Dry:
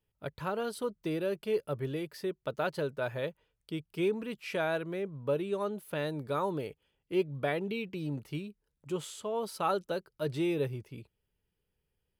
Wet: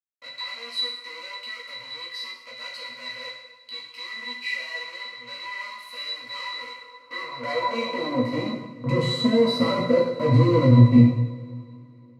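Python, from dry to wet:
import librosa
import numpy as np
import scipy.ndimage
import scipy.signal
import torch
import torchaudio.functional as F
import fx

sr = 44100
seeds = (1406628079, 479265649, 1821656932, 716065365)

y = fx.fuzz(x, sr, gain_db=56.0, gate_db=-55.0)
y = fx.octave_resonator(y, sr, note='B', decay_s=0.14)
y = fx.rev_double_slope(y, sr, seeds[0], early_s=0.86, late_s=3.2, knee_db=-19, drr_db=-1.0)
y = fx.filter_sweep_highpass(y, sr, from_hz=2400.0, to_hz=160.0, start_s=6.67, end_s=9.01, q=0.95)
y = fx.doubler(y, sr, ms=17.0, db=-5)
y = F.gain(torch.from_numpy(y), 4.5).numpy()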